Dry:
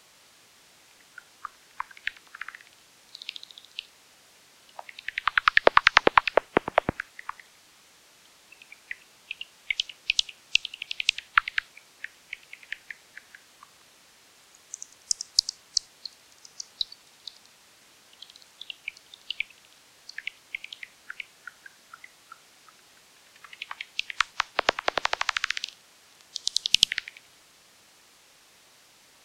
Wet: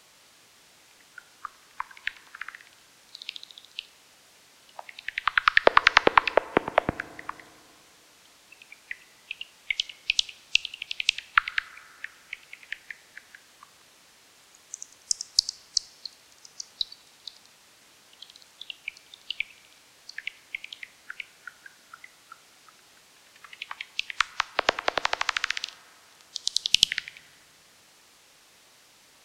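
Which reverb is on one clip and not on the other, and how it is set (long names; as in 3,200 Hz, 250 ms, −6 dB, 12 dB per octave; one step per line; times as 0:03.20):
feedback delay network reverb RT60 2.7 s, high-frequency decay 0.35×, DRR 18 dB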